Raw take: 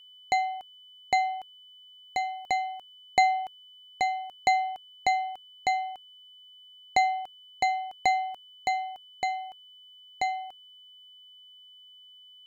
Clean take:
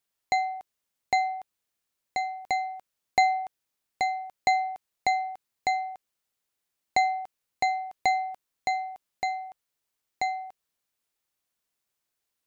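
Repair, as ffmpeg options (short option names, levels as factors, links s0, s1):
-af "bandreject=f=3000:w=30"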